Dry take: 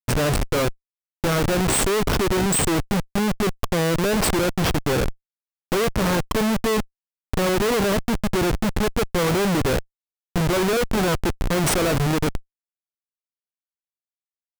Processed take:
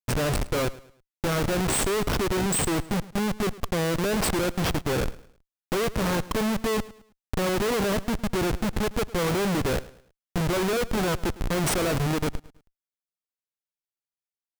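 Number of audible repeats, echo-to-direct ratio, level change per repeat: 2, -18.5 dB, -9.0 dB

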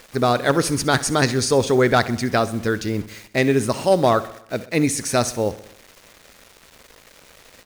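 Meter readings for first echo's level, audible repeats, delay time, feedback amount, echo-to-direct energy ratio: -17.0 dB, 4, 65 ms, 58%, -15.5 dB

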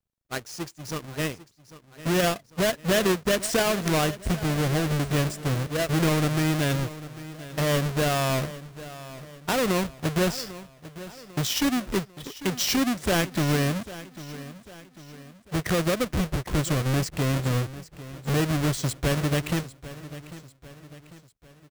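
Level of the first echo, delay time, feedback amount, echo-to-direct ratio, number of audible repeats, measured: -16.0 dB, 797 ms, 47%, -15.0 dB, 3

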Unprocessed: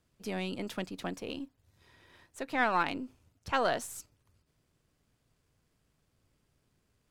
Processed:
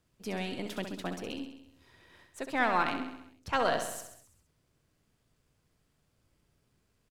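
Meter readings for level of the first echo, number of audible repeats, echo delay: -8.0 dB, 6, 66 ms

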